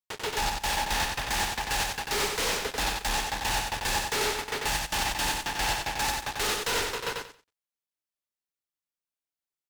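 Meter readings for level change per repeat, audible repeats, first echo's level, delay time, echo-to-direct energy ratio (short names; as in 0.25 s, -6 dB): -13.5 dB, 3, -3.5 dB, 92 ms, -3.5 dB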